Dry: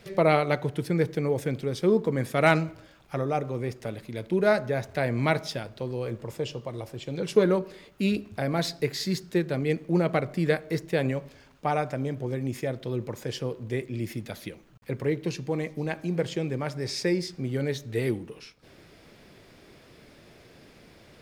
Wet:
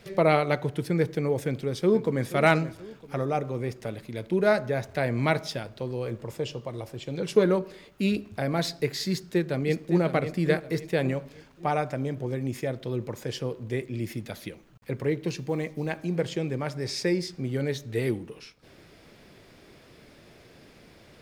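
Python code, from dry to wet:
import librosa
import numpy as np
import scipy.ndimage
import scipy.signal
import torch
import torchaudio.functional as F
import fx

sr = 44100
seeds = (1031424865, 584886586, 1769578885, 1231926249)

y = fx.echo_throw(x, sr, start_s=1.45, length_s=0.84, ms=480, feedback_pct=40, wet_db=-13.5)
y = fx.echo_throw(y, sr, start_s=9.11, length_s=0.92, ms=560, feedback_pct=40, wet_db=-9.5)
y = fx.quant_companded(y, sr, bits=8, at=(15.28, 15.99))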